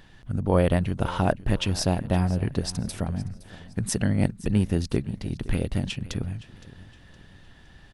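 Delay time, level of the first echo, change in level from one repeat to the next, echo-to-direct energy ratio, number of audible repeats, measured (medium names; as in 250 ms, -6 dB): 515 ms, -18.5 dB, -8.0 dB, -18.0 dB, 3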